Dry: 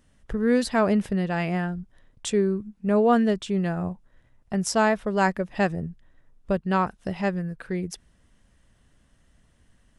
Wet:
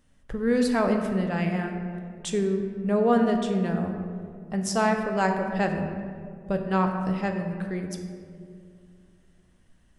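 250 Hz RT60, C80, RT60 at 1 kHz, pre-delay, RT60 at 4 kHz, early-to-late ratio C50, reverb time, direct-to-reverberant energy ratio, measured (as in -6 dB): 2.8 s, 7.0 dB, 1.9 s, 4 ms, 1.1 s, 5.5 dB, 2.3 s, 3.5 dB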